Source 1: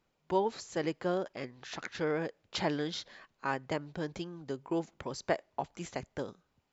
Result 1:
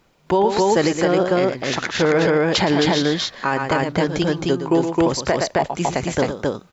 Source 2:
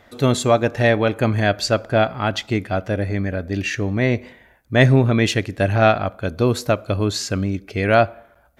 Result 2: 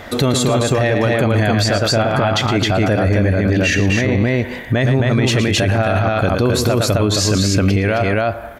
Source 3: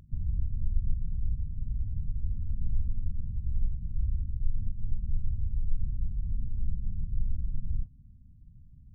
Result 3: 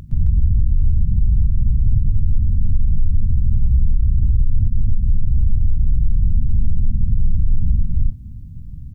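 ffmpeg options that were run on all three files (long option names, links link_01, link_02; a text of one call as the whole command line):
ffmpeg -i in.wav -filter_complex "[0:a]acompressor=threshold=-23dB:ratio=6,asplit=2[link_01][link_02];[link_02]aecho=0:1:113.7|265.3:0.316|0.794[link_03];[link_01][link_03]amix=inputs=2:normalize=0,alimiter=level_in=24dB:limit=-1dB:release=50:level=0:latency=1,volume=-6.5dB" out.wav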